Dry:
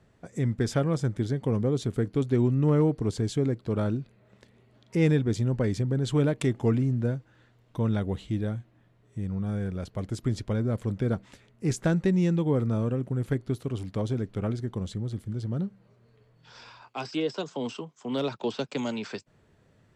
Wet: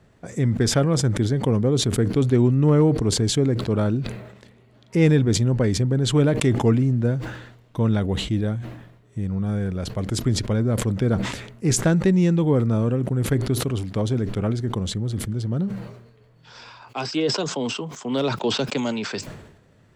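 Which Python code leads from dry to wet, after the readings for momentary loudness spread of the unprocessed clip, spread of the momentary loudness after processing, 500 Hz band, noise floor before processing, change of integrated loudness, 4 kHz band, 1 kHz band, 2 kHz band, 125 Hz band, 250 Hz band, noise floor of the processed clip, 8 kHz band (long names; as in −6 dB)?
11 LU, 12 LU, +6.0 dB, −62 dBFS, +6.5 dB, +13.0 dB, +7.0 dB, +7.5 dB, +6.5 dB, +6.0 dB, −55 dBFS, +15.0 dB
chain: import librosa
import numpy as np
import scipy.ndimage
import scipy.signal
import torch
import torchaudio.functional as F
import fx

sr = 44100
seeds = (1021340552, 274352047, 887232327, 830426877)

y = fx.sustainer(x, sr, db_per_s=64.0)
y = y * 10.0 ** (5.5 / 20.0)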